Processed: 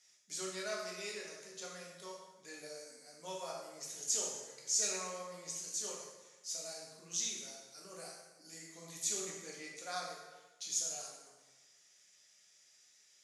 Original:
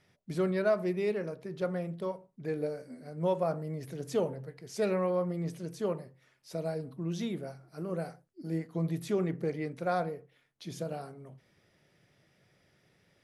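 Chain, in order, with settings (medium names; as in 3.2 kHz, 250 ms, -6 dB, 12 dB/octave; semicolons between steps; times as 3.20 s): band-pass filter 6.8 kHz, Q 5.6; plate-style reverb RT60 1.2 s, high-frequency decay 0.8×, DRR -3.5 dB; trim +18 dB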